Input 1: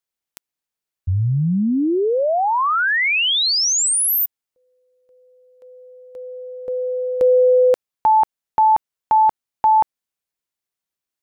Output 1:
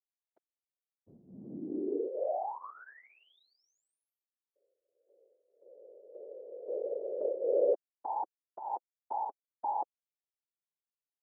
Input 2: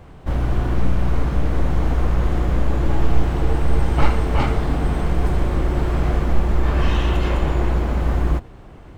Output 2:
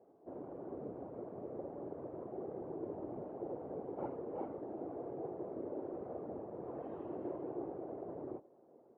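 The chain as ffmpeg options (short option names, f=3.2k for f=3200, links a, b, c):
-af "flanger=delay=2.4:depth=2.3:regen=-33:speed=0.39:shape=triangular,afftfilt=real='hypot(re,im)*cos(2*PI*random(0))':imag='hypot(re,im)*sin(2*PI*random(1))':win_size=512:overlap=0.75,asuperpass=centerf=470:order=4:qfactor=1.2,volume=-4dB"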